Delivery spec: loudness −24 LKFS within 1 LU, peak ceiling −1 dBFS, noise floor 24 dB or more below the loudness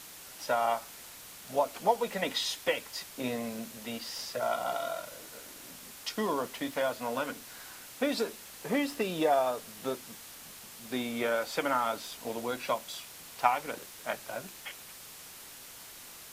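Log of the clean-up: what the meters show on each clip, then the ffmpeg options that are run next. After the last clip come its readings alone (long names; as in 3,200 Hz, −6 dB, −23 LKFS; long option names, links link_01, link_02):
background noise floor −49 dBFS; target noise floor −57 dBFS; integrated loudness −33.0 LKFS; sample peak −10.5 dBFS; target loudness −24.0 LKFS
→ -af "afftdn=noise_reduction=8:noise_floor=-49"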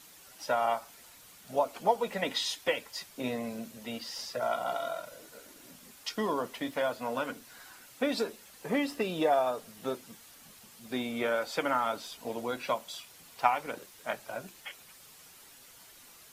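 background noise floor −55 dBFS; target noise floor −57 dBFS
→ -af "afftdn=noise_reduction=6:noise_floor=-55"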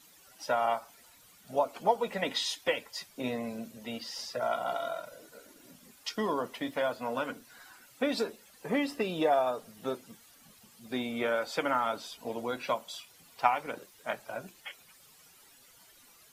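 background noise floor −59 dBFS; integrated loudness −33.0 LKFS; sample peak −10.5 dBFS; target loudness −24.0 LKFS
→ -af "volume=9dB"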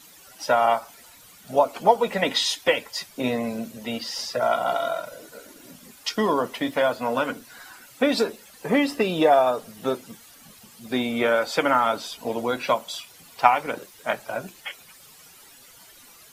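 integrated loudness −24.0 LKFS; sample peak −1.5 dBFS; background noise floor −50 dBFS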